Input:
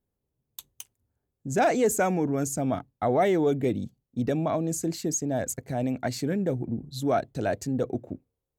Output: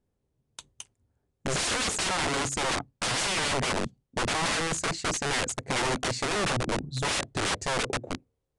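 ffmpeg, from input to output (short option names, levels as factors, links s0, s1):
-af "highshelf=f=2900:g=-5,aeval=exprs='(mod(23.7*val(0)+1,2)-1)/23.7':c=same,aresample=22050,aresample=44100,volume=1.78"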